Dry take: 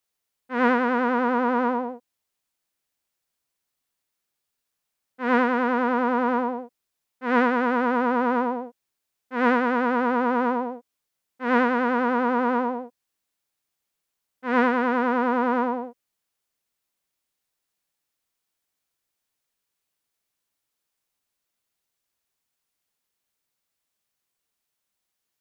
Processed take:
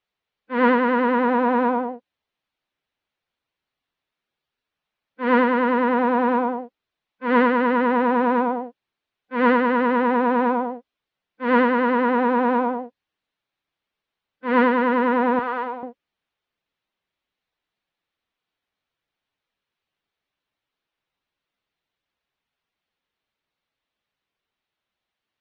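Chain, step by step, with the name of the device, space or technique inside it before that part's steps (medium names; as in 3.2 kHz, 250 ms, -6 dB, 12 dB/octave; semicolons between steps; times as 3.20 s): 15.39–15.83 s: high-pass 1.2 kHz 6 dB/octave; clip after many re-uploads (low-pass 4.1 kHz 24 dB/octave; coarse spectral quantiser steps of 15 dB); trim +3.5 dB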